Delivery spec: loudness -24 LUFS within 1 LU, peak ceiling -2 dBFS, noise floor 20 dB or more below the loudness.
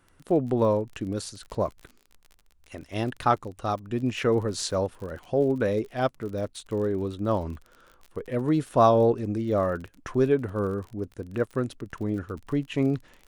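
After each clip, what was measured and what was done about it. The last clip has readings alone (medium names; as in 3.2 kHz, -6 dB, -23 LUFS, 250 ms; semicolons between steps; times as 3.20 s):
tick rate 39 per s; loudness -27.0 LUFS; peak level -7.0 dBFS; loudness target -24.0 LUFS
-> de-click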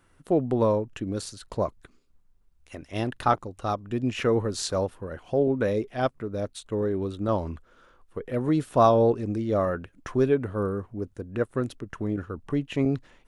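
tick rate 0 per s; loudness -27.0 LUFS; peak level -7.0 dBFS; loudness target -24.0 LUFS
-> trim +3 dB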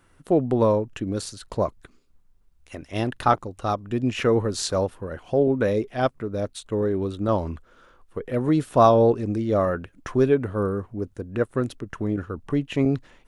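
loudness -24.0 LUFS; peak level -4.0 dBFS; noise floor -59 dBFS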